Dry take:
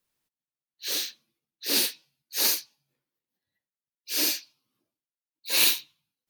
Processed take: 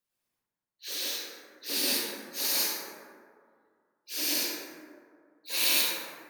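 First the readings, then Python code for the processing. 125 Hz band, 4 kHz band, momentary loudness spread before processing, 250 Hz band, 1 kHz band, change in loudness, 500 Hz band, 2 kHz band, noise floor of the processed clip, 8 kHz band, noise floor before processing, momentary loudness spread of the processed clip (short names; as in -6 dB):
n/a, -2.5 dB, 15 LU, 0.0 dB, +1.0 dB, -3.5 dB, +0.5 dB, -1.0 dB, under -85 dBFS, -2.5 dB, under -85 dBFS, 18 LU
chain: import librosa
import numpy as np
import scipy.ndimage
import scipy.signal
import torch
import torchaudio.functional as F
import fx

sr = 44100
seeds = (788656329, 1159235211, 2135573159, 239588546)

y = fx.low_shelf(x, sr, hz=110.0, db=-6.0)
y = fx.rev_plate(y, sr, seeds[0], rt60_s=2.1, hf_ratio=0.35, predelay_ms=85, drr_db=-7.0)
y = y * 10.0 ** (-7.5 / 20.0)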